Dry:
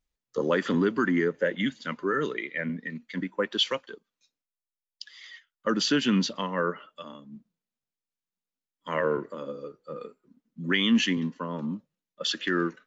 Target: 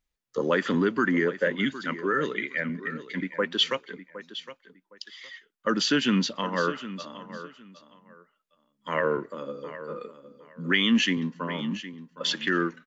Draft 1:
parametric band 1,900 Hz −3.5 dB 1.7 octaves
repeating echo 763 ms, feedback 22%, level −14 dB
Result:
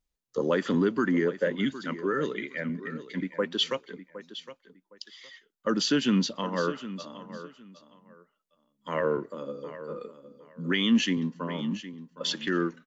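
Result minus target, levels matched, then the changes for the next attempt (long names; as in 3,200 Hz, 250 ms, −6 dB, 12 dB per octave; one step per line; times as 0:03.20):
2,000 Hz band −4.0 dB
change: parametric band 1,900 Hz +3 dB 1.7 octaves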